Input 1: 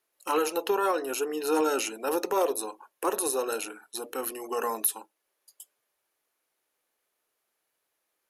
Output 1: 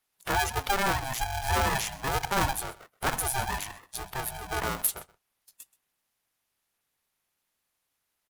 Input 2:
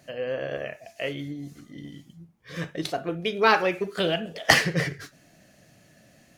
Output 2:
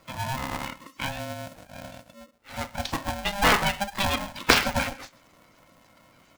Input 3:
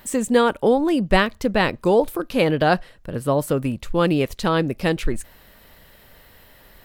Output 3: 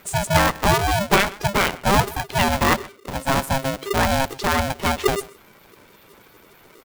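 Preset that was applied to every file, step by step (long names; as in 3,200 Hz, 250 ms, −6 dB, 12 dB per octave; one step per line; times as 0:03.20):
spectral magnitudes quantised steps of 30 dB
single-tap delay 128 ms −20.5 dB
ring modulator with a square carrier 400 Hz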